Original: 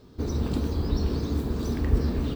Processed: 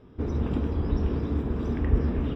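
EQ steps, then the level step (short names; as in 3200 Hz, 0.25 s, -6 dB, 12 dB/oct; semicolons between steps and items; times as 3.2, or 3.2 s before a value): polynomial smoothing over 25 samples; 0.0 dB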